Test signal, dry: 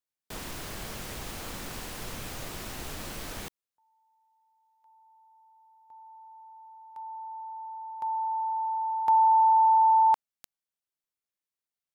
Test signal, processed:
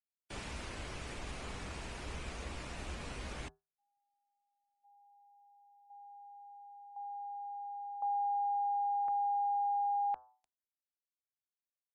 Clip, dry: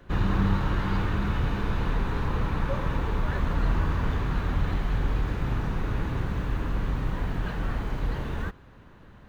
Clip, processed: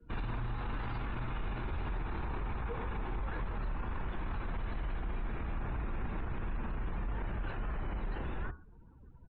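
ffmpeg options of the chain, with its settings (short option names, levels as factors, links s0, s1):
-af "bandreject=f=118.3:t=h:w=4,bandreject=f=236.6:t=h:w=4,bandreject=f=354.9:t=h:w=4,bandreject=f=473.2:t=h:w=4,bandreject=f=591.5:t=h:w=4,bandreject=f=709.8:t=h:w=4,bandreject=f=828.1:t=h:w=4,bandreject=f=946.4:t=h:w=4,bandreject=f=1064.7:t=h:w=4,bandreject=f=1183:t=h:w=4,bandreject=f=1301.3:t=h:w=4,bandreject=f=1419.6:t=h:w=4,bandreject=f=1537.9:t=h:w=4,bandreject=f=1656.2:t=h:w=4,bandreject=f=1774.5:t=h:w=4,afftdn=nr=26:nf=-49,equalizer=f=2500:t=o:w=0.51:g=4.5,acompressor=threshold=0.0794:ratio=6:attack=15:release=624:knee=1:detection=rms,afreqshift=-77,alimiter=level_in=1.26:limit=0.0631:level=0:latency=1:release=17,volume=0.794,aresample=22050,aresample=44100,adynamicequalizer=threshold=0.00447:dfrequency=1900:dqfactor=0.7:tfrequency=1900:tqfactor=0.7:attack=5:release=100:ratio=0.375:range=1.5:mode=cutabove:tftype=highshelf,volume=0.668"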